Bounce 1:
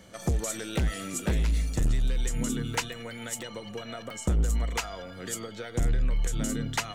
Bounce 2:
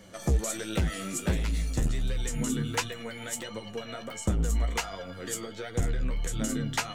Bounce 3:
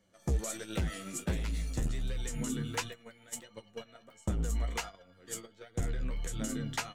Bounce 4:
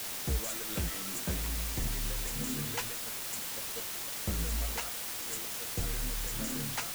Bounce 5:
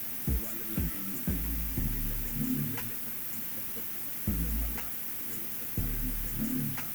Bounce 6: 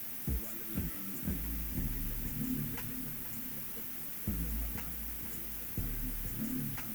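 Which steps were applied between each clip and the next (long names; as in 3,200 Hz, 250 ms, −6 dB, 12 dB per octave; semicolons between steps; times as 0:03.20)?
flanger 1.4 Hz, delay 9.1 ms, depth 6.7 ms, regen +33%; level +4 dB
noise gate −35 dBFS, range −14 dB; level −5.5 dB
bit-depth reduction 6 bits, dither triangular; level −2.5 dB
graphic EQ with 10 bands 125 Hz +3 dB, 250 Hz +8 dB, 500 Hz −7 dB, 1,000 Hz −5 dB, 4,000 Hz −10 dB, 8,000 Hz −10 dB, 16,000 Hz +8 dB
feedback echo with a low-pass in the loop 475 ms, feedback 53%, level −9 dB; level −5 dB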